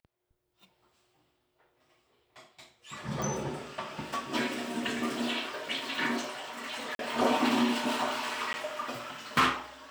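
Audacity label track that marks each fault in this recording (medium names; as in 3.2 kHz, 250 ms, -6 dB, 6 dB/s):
3.220000	3.220000	pop
6.950000	6.990000	dropout 42 ms
8.530000	8.540000	dropout 10 ms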